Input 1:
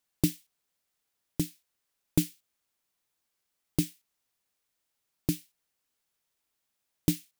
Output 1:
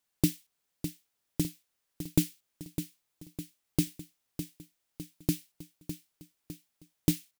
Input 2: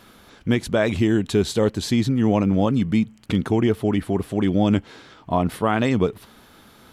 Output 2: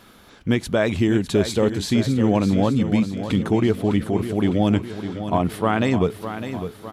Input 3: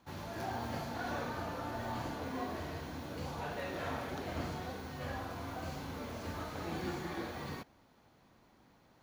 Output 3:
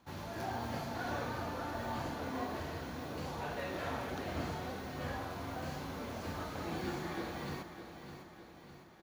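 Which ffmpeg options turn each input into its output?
-af "aecho=1:1:606|1212|1818|2424|3030|3636:0.316|0.171|0.0922|0.0498|0.0269|0.0145"

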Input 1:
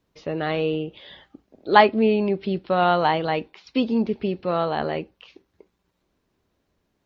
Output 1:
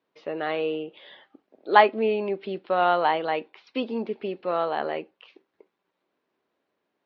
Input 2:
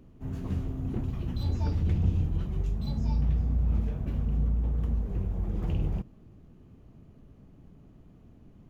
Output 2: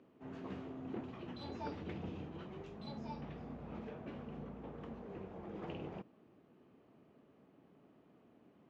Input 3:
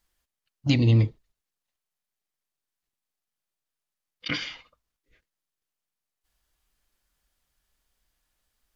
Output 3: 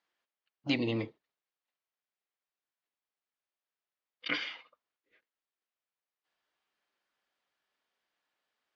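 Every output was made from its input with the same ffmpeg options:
-af "highpass=350,lowpass=3.3k,volume=-1.5dB"

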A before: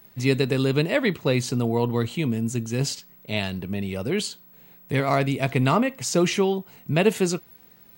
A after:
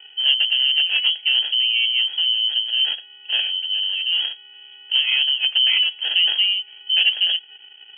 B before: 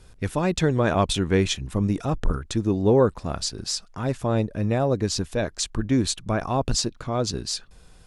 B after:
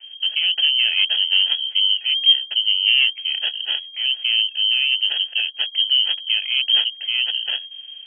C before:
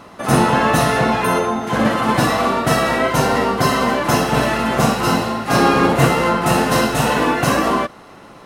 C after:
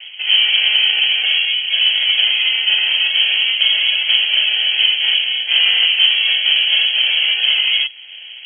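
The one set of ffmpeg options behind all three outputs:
-filter_complex "[0:a]afreqshift=75,acrossover=split=720|1100[a][b][c];[c]acrusher=samples=41:mix=1:aa=0.000001[d];[a][b][d]amix=inputs=3:normalize=0,acontrast=69,lowshelf=f=280:g=9,lowpass=f=2.8k:t=q:w=0.5098,lowpass=f=2.8k:t=q:w=0.6013,lowpass=f=2.8k:t=q:w=0.9,lowpass=f=2.8k:t=q:w=2.563,afreqshift=-3300,asplit=2[e][f];[f]acompressor=threshold=-23dB:ratio=6,volume=-1dB[g];[e][g]amix=inputs=2:normalize=0,volume=-8.5dB"

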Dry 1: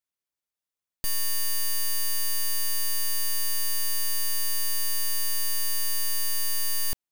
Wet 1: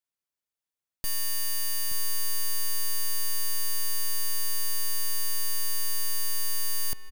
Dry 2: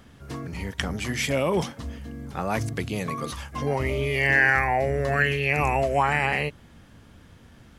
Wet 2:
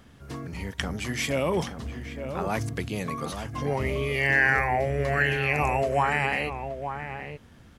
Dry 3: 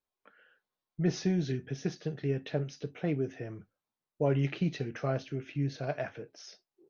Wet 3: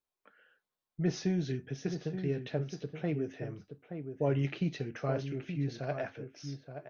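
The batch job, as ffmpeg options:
-filter_complex "[0:a]asplit=2[a][b];[b]adelay=874.6,volume=-8dB,highshelf=f=4k:g=-19.7[c];[a][c]amix=inputs=2:normalize=0,volume=-2dB"

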